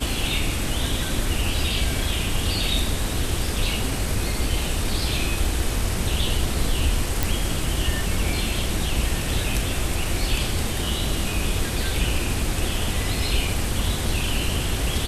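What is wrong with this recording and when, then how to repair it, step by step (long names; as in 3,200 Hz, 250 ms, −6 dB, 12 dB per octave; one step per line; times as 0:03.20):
0:07.23: click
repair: click removal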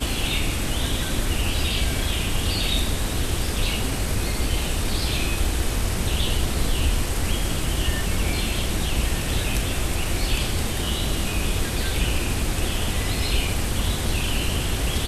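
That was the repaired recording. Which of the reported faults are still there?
none of them is left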